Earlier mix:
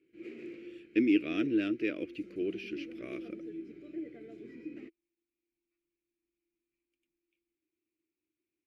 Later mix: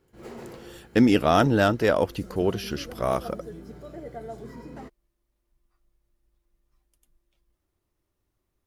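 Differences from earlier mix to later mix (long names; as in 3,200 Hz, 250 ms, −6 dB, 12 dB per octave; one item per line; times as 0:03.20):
background −5.5 dB
master: remove pair of resonant band-passes 880 Hz, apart 2.9 octaves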